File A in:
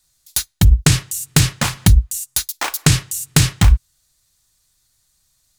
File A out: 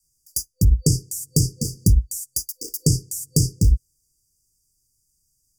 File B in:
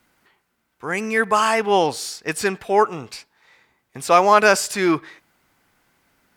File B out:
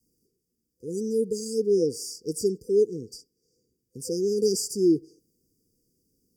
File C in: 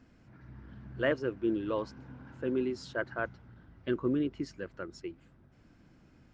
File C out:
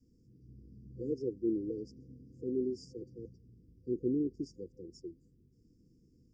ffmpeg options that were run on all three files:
ffmpeg -i in.wav -af "adynamicequalizer=threshold=0.0282:dfrequency=380:dqfactor=0.87:tfrequency=380:tqfactor=0.87:attack=5:release=100:ratio=0.375:range=2:mode=boostabove:tftype=bell,afftfilt=real='re*(1-between(b*sr/4096,510,4600))':imag='im*(1-between(b*sr/4096,510,4600))':win_size=4096:overlap=0.75,volume=-5dB" out.wav

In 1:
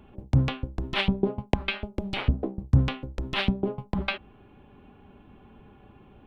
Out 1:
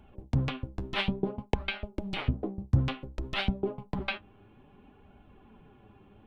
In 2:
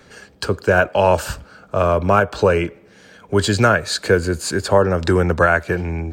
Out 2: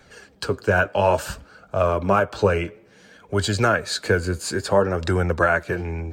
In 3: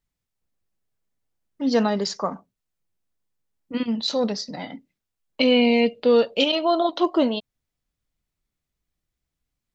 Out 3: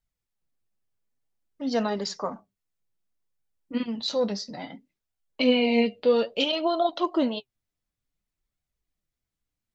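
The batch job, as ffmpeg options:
ffmpeg -i in.wav -af "flanger=delay=1.3:depth=8.9:regen=48:speed=0.58:shape=sinusoidal" out.wav

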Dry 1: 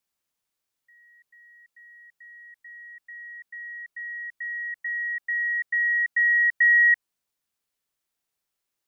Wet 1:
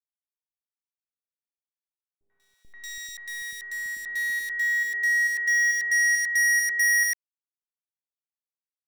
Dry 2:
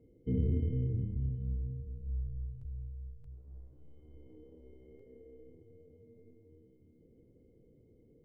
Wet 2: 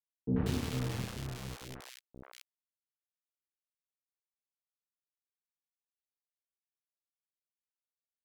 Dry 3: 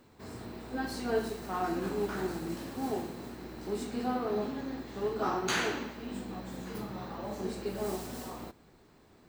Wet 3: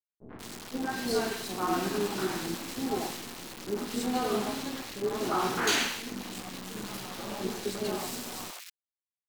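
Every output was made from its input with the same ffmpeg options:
ffmpeg -i in.wav -filter_complex "[0:a]highpass=140,acrusher=bits=8:dc=4:mix=0:aa=0.000001,highshelf=frequency=2200:gain=10.5,acontrast=62,aeval=exprs='sgn(val(0))*max(abs(val(0))-0.02,0)':channel_layout=same,aemphasis=mode=reproduction:type=cd,volume=20dB,asoftclip=hard,volume=-20dB,acrossover=split=560|1800[link_01][link_02][link_03];[link_02]adelay=90[link_04];[link_03]adelay=190[link_05];[link_01][link_04][link_05]amix=inputs=3:normalize=0" out.wav

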